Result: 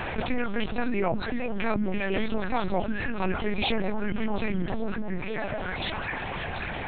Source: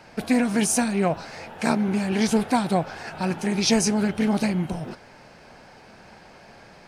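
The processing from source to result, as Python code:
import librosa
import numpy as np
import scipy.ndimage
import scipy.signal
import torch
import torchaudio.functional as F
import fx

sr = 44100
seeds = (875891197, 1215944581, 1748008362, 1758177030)

y = fx.dereverb_blind(x, sr, rt60_s=1.7)
y = scipy.signal.sosfilt(scipy.signal.butter(2, 3000.0, 'lowpass', fs=sr, output='sos'), y)
y = fx.high_shelf(y, sr, hz=2200.0, db=9.5)
y = fx.echo_stepped(y, sr, ms=548, hz=210.0, octaves=1.4, feedback_pct=70, wet_db=-6)
y = fx.lpc_vocoder(y, sr, seeds[0], excitation='pitch_kept', order=8)
y = fx.env_flatten(y, sr, amount_pct=70)
y = y * librosa.db_to_amplitude(-6.5)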